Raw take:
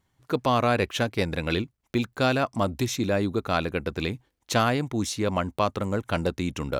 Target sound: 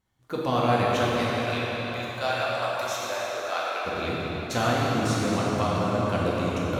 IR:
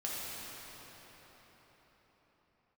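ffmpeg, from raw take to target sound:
-filter_complex "[0:a]asettb=1/sr,asplit=3[s0][s1][s2];[s0]atrim=end=1.174[s3];[s1]atrim=start=1.17:end=3.85,asetpts=PTS-STARTPTS,afade=t=in:d=0.004:c=qsin,afade=t=out:st=2.676:d=0.004:c=qsin,highpass=f=580:w=0.5412,highpass=f=580:w=1.3066[s4];[s2]atrim=start=3.846[s5];[s3][s4]acrossfade=d=0.004:c1=hsin:c2=qsin[s6];[s6][s5]acrossfade=d=0.004:c1=qsin:c2=hsin[s7];[1:a]atrim=start_sample=2205[s8];[s7][s8]afir=irnorm=-1:irlink=0,volume=0.708"

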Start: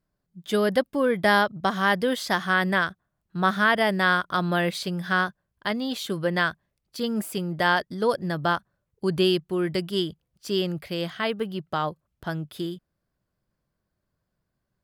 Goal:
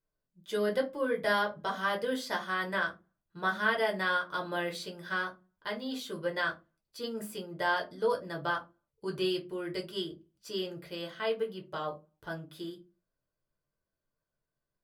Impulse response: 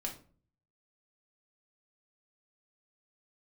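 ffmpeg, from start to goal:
-filter_complex "[0:a]lowshelf=f=210:g=-7[s0];[1:a]atrim=start_sample=2205,asetrate=88200,aresample=44100[s1];[s0][s1]afir=irnorm=-1:irlink=0,volume=0.75"

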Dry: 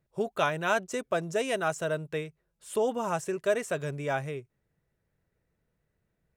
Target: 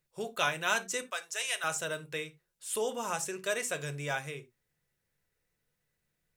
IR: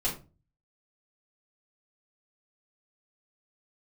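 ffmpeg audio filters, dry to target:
-filter_complex "[0:a]asettb=1/sr,asplit=3[s0][s1][s2];[s0]atrim=end=1.024[s3];[s1]atrim=start=1.02:end=1.64,asetpts=PTS-STARTPTS,afade=t=in:d=0.004:c=qsin,afade=t=out:st=0.616:d=0.004:c=qsin,highpass=960[s4];[s2]atrim=start=1.636[s5];[s3][s4]acrossfade=d=0.004:c1=hsin:c2=qsin[s6];[s6][s5]acrossfade=d=0.004:c1=qsin:c2=hsin,tiltshelf=f=1500:g=-8,asplit=2[s7][s8];[1:a]atrim=start_sample=2205,atrim=end_sample=4410[s9];[s8][s9]afir=irnorm=-1:irlink=0,volume=0.224[s10];[s7][s10]amix=inputs=2:normalize=0,volume=0.75"

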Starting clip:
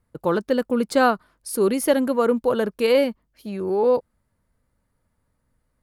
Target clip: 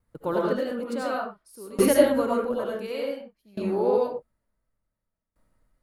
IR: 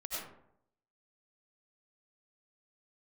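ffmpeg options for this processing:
-filter_complex "[0:a]asettb=1/sr,asplit=3[s0][s1][s2];[s0]atrim=end=1.704[s3];[s1]atrim=start=1.7:end=2.24,asetpts=PTS-STARTPTS,afade=t=in:d=0.004:c=qsin,afade=t=out:st=0.536:d=0.004:c=qsin,aeval=exprs='val(0)+0.00562*(sin(2*PI*60*n/s)+sin(2*PI*2*60*n/s)/2+sin(2*PI*3*60*n/s)/3+sin(2*PI*4*60*n/s)/4+sin(2*PI*5*60*n/s)/5)':c=same[s4];[s2]atrim=start=2.236[s5];[s3][s4]acrossfade=d=0.004:c1=hsin:c2=qsin[s6];[s6][s5]acrossfade=d=0.004:c1=qsin:c2=hsin[s7];[1:a]atrim=start_sample=2205,afade=t=out:st=0.27:d=0.01,atrim=end_sample=12348[s8];[s7][s8]afir=irnorm=-1:irlink=0,aeval=exprs='val(0)*pow(10,-21*if(lt(mod(0.56*n/s,1),2*abs(0.56)/1000),1-mod(0.56*n/s,1)/(2*abs(0.56)/1000),(mod(0.56*n/s,1)-2*abs(0.56)/1000)/(1-2*abs(0.56)/1000))/20)':c=same,volume=1.26"

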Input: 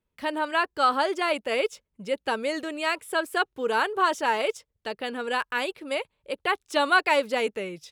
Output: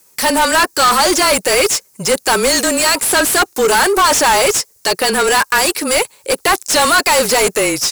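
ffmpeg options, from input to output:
-filter_complex "[0:a]afreqshift=-25,aexciter=amount=11.5:drive=5:freq=4900,asplit=2[s0][s1];[s1]highpass=f=720:p=1,volume=50.1,asoftclip=type=tanh:threshold=0.668[s2];[s0][s2]amix=inputs=2:normalize=0,lowpass=f=4800:p=1,volume=0.501"

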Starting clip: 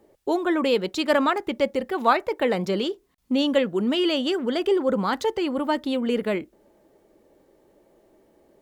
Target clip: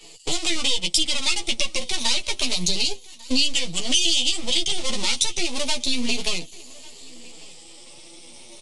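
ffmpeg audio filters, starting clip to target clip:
-filter_complex "[0:a]afftfilt=real='re*pow(10,19/40*sin(2*PI*(1.5*log(max(b,1)*sr/1024/100)/log(2)-(0.29)*(pts-256)/sr)))':imag='im*pow(10,19/40*sin(2*PI*(1.5*log(max(b,1)*sr/1024/100)/log(2)-(0.29)*(pts-256)/sr)))':win_size=1024:overlap=0.75,highshelf=f=2800:g=-5.5,asplit=2[s0][s1];[s1]alimiter=limit=0.211:level=0:latency=1:release=23,volume=1.41[s2];[s0][s2]amix=inputs=2:normalize=0,acompressor=threshold=0.0891:ratio=2.5,aeval=exprs='max(val(0),0)':c=same,asplit=2[s3][s4];[s4]adelay=12,volume=0.631[s5];[s3][s5]amix=inputs=2:normalize=0,flanger=delay=5.7:depth=3.1:regen=39:speed=1.1:shape=sinusoidal,aexciter=amount=14.1:drive=8.6:freq=2500,acrossover=split=210[s6][s7];[s7]acompressor=threshold=0.0447:ratio=2.5[s8];[s6][s8]amix=inputs=2:normalize=0,aecho=1:1:1148|2296:0.0708|0.0227,aresample=22050,aresample=44100,adynamicequalizer=threshold=0.0141:dfrequency=4500:dqfactor=0.7:tfrequency=4500:tqfactor=0.7:attack=5:release=100:ratio=0.375:range=2:mode=boostabove:tftype=highshelf,volume=1.12"

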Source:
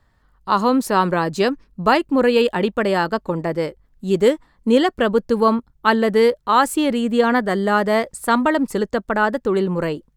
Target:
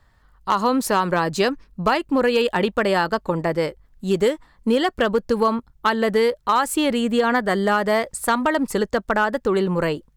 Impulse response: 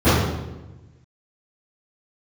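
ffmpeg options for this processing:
-af "equalizer=f=260:t=o:w=2.1:g=-4.5,acompressor=threshold=0.126:ratio=6,volume=4.73,asoftclip=hard,volume=0.211,volume=1.5"

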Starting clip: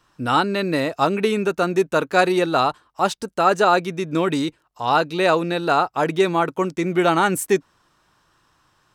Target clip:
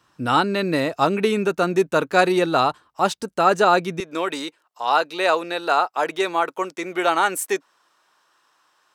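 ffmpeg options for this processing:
-af "asetnsamples=n=441:p=0,asendcmd='4 highpass f 490',highpass=72"

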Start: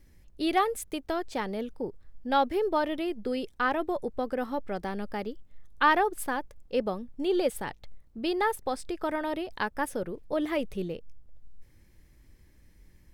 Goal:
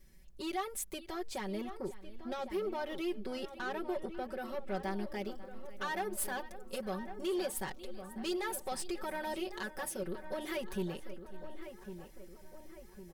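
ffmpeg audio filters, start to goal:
-filter_complex "[0:a]alimiter=limit=0.0708:level=0:latency=1:release=168,asetnsamples=n=441:p=0,asendcmd='5.24 highshelf g 11.5',highshelf=f=3100:g=6,aecho=1:1:545|1090|1635:0.106|0.0339|0.0108,asoftclip=type=tanh:threshold=0.0422,aecho=1:1:5.3:0.95,asplit=2[s0][s1];[s1]adelay=1105,lowpass=f=1800:p=1,volume=0.299,asplit=2[s2][s3];[s3]adelay=1105,lowpass=f=1800:p=1,volume=0.55,asplit=2[s4][s5];[s5]adelay=1105,lowpass=f=1800:p=1,volume=0.55,asplit=2[s6][s7];[s7]adelay=1105,lowpass=f=1800:p=1,volume=0.55,asplit=2[s8][s9];[s9]adelay=1105,lowpass=f=1800:p=1,volume=0.55,asplit=2[s10][s11];[s11]adelay=1105,lowpass=f=1800:p=1,volume=0.55[s12];[s0][s2][s4][s6][s8][s10][s12]amix=inputs=7:normalize=0,volume=0.473"

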